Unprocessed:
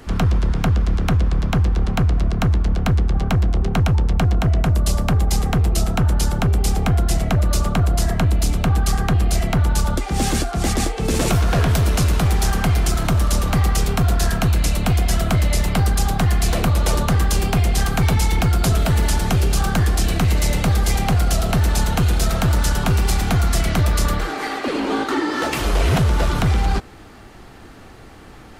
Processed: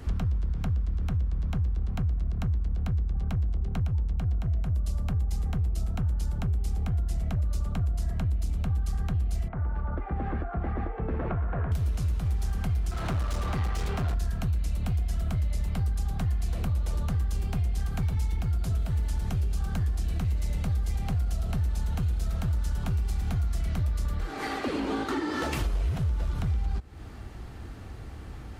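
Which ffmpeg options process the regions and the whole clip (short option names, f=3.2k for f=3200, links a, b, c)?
-filter_complex "[0:a]asettb=1/sr,asplit=3[a][b][c];[a]atrim=end=9.484[d];[b]atrim=start=9.48:end=11.72,asetpts=PTS-STARTPTS,afade=t=in:d=0.004:c=qsin,afade=t=out:st=2.236:d=0.004:c=qsin,lowpass=f=1.7k:w=0.5412,lowpass=f=1.7k:w=1.3066,lowshelf=f=270:g=-11.5[e];[c]atrim=start=11.716[f];[d][e]acrossfade=d=0.004:c1=hsin:c2=qsin[g];[g][f]acrossfade=d=0.004:c1=qsin:c2=hsin,asettb=1/sr,asplit=3[h][i][j];[h]atrim=end=12.914[k];[i]atrim=start=12.91:end=14.14,asetpts=PTS-STARTPTS,afade=t=in:d=0.004:c=qsin,afade=t=out:st=1.226:d=0.004:c=qsin,aeval=exprs='clip(val(0),-1,0.141)':c=same,asplit=2[l][m];[m]highpass=f=720:p=1,volume=20dB,asoftclip=type=tanh:threshold=-9.5dB[n];[l][n]amix=inputs=2:normalize=0,lowpass=f=2.5k:p=1,volume=-6dB[o];[j]atrim=start=14.136[p];[k][o]acrossfade=d=0.004:c1=hsin:c2=qsin[q];[q][p]acrossfade=d=0.004:c1=qsin:c2=hsin,equalizer=f=65:w=0.58:g=14.5,acompressor=threshold=-19dB:ratio=6,volume=-7dB"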